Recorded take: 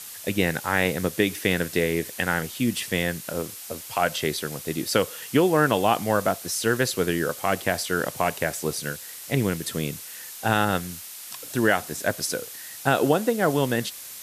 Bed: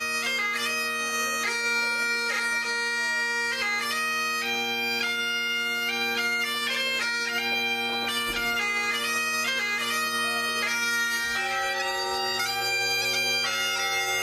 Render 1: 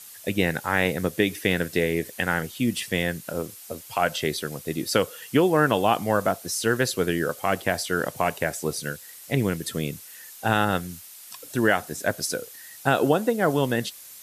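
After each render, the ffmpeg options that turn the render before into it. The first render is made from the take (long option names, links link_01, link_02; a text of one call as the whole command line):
ffmpeg -i in.wav -af "afftdn=noise_reduction=7:noise_floor=-40" out.wav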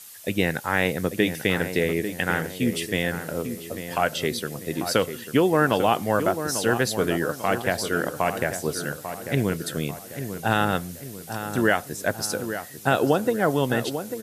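ffmpeg -i in.wav -filter_complex "[0:a]asplit=2[link_01][link_02];[link_02]adelay=844,lowpass=frequency=1900:poles=1,volume=-9dB,asplit=2[link_03][link_04];[link_04]adelay=844,lowpass=frequency=1900:poles=1,volume=0.48,asplit=2[link_05][link_06];[link_06]adelay=844,lowpass=frequency=1900:poles=1,volume=0.48,asplit=2[link_07][link_08];[link_08]adelay=844,lowpass=frequency=1900:poles=1,volume=0.48,asplit=2[link_09][link_10];[link_10]adelay=844,lowpass=frequency=1900:poles=1,volume=0.48[link_11];[link_01][link_03][link_05][link_07][link_09][link_11]amix=inputs=6:normalize=0" out.wav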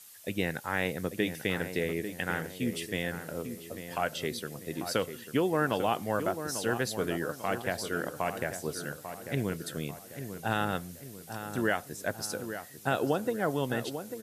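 ffmpeg -i in.wav -af "volume=-8dB" out.wav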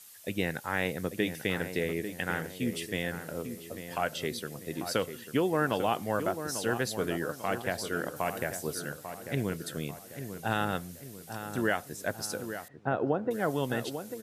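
ffmpeg -i in.wav -filter_complex "[0:a]asettb=1/sr,asplit=3[link_01][link_02][link_03];[link_01]atrim=end=8.164[link_04];[link_02]atrim=start=8.16:end=8.8,asetpts=PTS-STARTPTS,afade=type=in:duration=0.004:curve=qsin,afade=type=out:start_time=0.636:duration=0.004:curve=qsin,highshelf=frequency=11000:gain=7.5[link_05];[link_03]atrim=start=8.796[link_06];[link_04][link_05]acrossfade=duration=0.004:curve1=hsin:curve2=qsin[link_07];[link_07][link_06]acrossfade=duration=0.004:curve1=qsin:curve2=hsin,asettb=1/sr,asplit=3[link_08][link_09][link_10];[link_08]atrim=end=12.684[link_11];[link_09]atrim=start=12.68:end=13.31,asetpts=PTS-STARTPTS,afade=type=in:duration=0.004:curve=qsin,afade=type=out:start_time=0.626:duration=0.004:curve=qsin,lowpass=1400[link_12];[link_10]atrim=start=13.306[link_13];[link_11][link_12]acrossfade=duration=0.004:curve1=hsin:curve2=qsin[link_14];[link_14][link_13]acrossfade=duration=0.004:curve1=qsin:curve2=hsin" out.wav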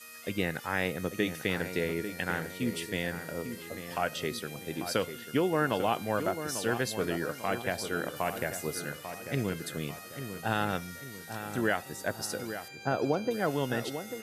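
ffmpeg -i in.wav -i bed.wav -filter_complex "[1:a]volume=-22dB[link_01];[0:a][link_01]amix=inputs=2:normalize=0" out.wav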